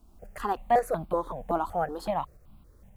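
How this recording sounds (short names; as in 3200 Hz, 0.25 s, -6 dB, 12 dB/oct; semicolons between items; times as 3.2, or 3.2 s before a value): a quantiser's noise floor 12-bit, dither none; tremolo saw up 3.8 Hz, depth 40%; notches that jump at a steady rate 5.3 Hz 510–1800 Hz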